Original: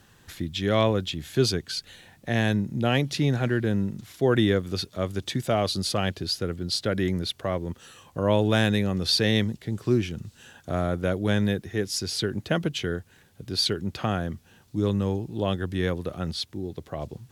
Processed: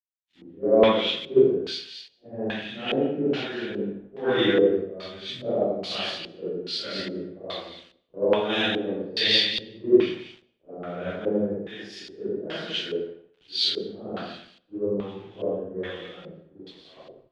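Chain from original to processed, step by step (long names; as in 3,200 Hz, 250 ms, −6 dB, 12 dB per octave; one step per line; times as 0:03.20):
random phases in long frames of 200 ms
high-pass filter 250 Hz 12 dB per octave
echo with a time of its own for lows and highs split 1,800 Hz, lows 85 ms, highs 227 ms, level −3 dB
centre clipping without the shift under −39 dBFS
auto-filter low-pass square 1.2 Hz 470–3,200 Hz
convolution reverb RT60 1.3 s, pre-delay 110 ms, DRR 19 dB
multiband upward and downward expander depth 100%
level −4.5 dB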